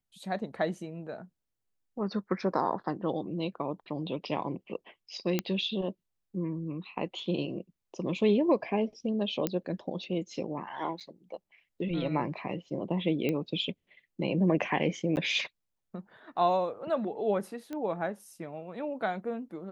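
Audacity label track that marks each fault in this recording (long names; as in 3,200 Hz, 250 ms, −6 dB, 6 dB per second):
5.390000	5.390000	click −13 dBFS
9.470000	9.470000	click −14 dBFS
11.000000	11.010000	drop-out 6.8 ms
13.290000	13.290000	click −18 dBFS
15.160000	15.170000	drop-out 9.9 ms
17.730000	17.730000	click −25 dBFS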